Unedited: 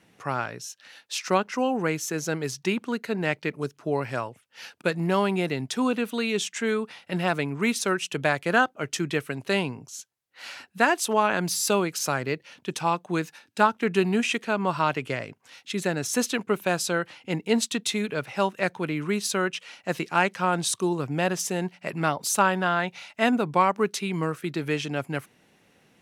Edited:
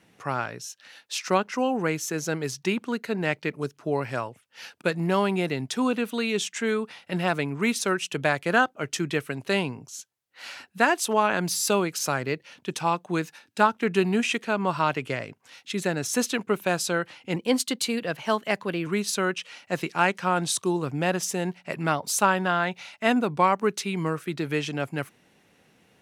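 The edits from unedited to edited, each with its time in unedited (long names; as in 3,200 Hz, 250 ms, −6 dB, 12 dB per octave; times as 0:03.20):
0:17.36–0:19.03: play speed 111%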